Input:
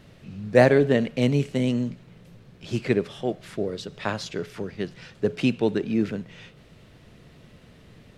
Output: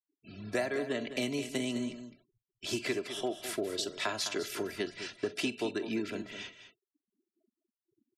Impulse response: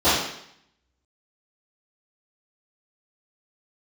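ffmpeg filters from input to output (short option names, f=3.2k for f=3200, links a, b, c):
-filter_complex "[0:a]acrossover=split=270|540|2400[a][b][c][d];[b]asoftclip=type=tanh:threshold=-20dB[e];[a][e][c][d]amix=inputs=4:normalize=0,aemphasis=mode=production:type=bsi,agate=range=-33dB:threshold=-44dB:ratio=3:detection=peak,aecho=1:1:3:0.64,adynamicequalizer=threshold=0.0251:dfrequency=310:dqfactor=2.4:tfrequency=310:tqfactor=2.4:attack=5:release=100:ratio=0.375:range=1.5:mode=cutabove:tftype=bell,acompressor=threshold=-30dB:ratio=8,afftfilt=real='re*gte(hypot(re,im),0.00282)':imag='im*gte(hypot(re,im),0.00282)':win_size=1024:overlap=0.75,aecho=1:1:46|207:0.126|0.282"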